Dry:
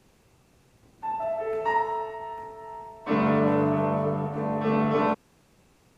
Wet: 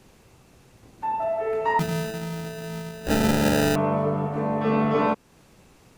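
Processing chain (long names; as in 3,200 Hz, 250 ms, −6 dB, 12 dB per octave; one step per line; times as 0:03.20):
in parallel at +1 dB: downward compressor, threshold −35 dBFS, peak gain reduction 15 dB
0:01.79–0:03.76: on the sum: sample-rate reduction 1,100 Hz, jitter 0%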